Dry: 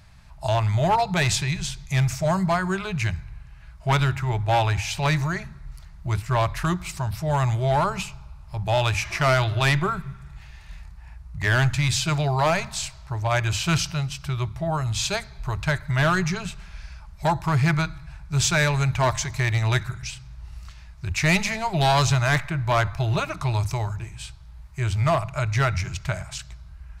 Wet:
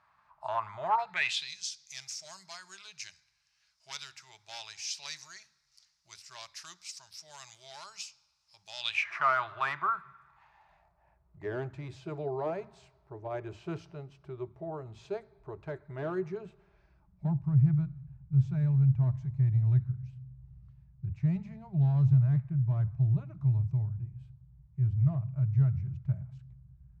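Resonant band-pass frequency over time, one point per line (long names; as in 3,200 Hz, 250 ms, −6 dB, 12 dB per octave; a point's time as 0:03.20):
resonant band-pass, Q 3.6
0:00.94 1,100 Hz
0:01.56 5,400 Hz
0:08.77 5,400 Hz
0:09.19 1,200 Hz
0:10.23 1,200 Hz
0:11.42 400 Hz
0:16.84 400 Hz
0:17.43 130 Hz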